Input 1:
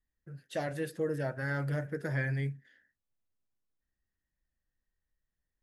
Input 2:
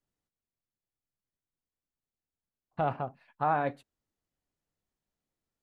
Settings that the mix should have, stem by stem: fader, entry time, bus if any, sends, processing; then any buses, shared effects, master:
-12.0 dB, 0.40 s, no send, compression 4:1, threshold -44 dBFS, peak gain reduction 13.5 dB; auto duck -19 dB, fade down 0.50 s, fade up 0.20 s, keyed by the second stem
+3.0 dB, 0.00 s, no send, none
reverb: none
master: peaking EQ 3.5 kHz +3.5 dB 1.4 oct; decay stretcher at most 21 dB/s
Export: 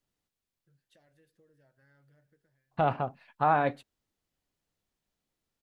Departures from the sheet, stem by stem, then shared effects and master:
stem 1 -12.0 dB -> -21.5 dB; master: missing decay stretcher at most 21 dB/s

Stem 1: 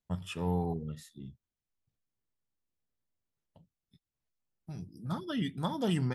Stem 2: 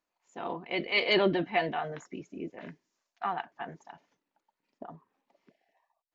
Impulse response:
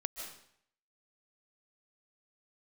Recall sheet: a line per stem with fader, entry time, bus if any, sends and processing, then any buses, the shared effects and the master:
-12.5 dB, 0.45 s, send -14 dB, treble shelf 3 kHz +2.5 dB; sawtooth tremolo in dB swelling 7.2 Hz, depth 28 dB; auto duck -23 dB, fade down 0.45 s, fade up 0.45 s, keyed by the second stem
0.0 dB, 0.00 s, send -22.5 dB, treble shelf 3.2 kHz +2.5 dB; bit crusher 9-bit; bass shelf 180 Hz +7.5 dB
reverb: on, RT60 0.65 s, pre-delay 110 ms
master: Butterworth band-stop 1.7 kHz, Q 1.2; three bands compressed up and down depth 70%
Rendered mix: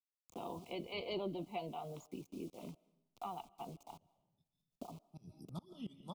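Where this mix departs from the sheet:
stem 1: send -14 dB -> -7 dB; stem 2 0.0 dB -> -11.5 dB

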